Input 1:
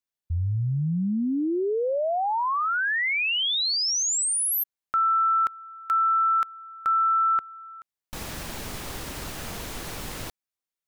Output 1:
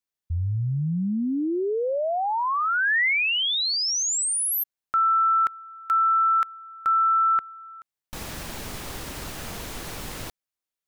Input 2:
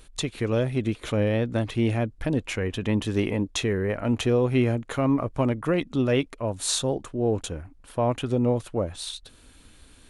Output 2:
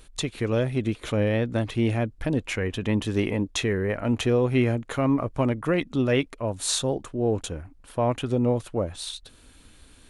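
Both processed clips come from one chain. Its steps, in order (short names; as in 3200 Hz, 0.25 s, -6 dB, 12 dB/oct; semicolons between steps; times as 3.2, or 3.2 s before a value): dynamic EQ 1900 Hz, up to +4 dB, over -36 dBFS, Q 1.8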